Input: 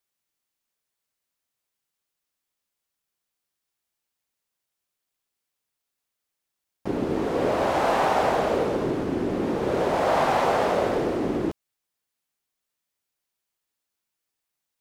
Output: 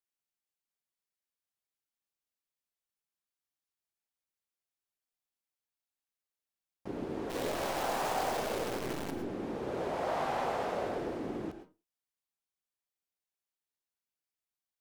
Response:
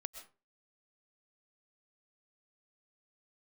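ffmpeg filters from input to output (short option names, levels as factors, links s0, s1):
-filter_complex "[0:a]asplit=3[s0][s1][s2];[s0]afade=t=out:st=7.29:d=0.02[s3];[s1]acrusher=bits=5:dc=4:mix=0:aa=0.000001,afade=t=in:st=7.29:d=0.02,afade=t=out:st=9.1:d=0.02[s4];[s2]afade=t=in:st=9.1:d=0.02[s5];[s3][s4][s5]amix=inputs=3:normalize=0[s6];[1:a]atrim=start_sample=2205,asetrate=52920,aresample=44100[s7];[s6][s7]afir=irnorm=-1:irlink=0,volume=0.447"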